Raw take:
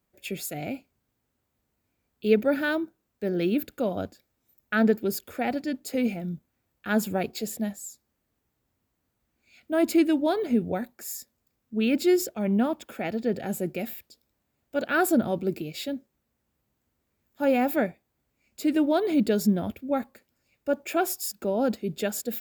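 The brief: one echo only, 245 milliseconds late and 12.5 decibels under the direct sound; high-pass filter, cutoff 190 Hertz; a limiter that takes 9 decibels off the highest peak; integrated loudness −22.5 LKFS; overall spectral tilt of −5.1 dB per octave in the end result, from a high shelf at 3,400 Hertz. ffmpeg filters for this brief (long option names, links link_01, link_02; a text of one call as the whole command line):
ffmpeg -i in.wav -af "highpass=190,highshelf=frequency=3400:gain=-4,alimiter=limit=-18dB:level=0:latency=1,aecho=1:1:245:0.237,volume=7dB" out.wav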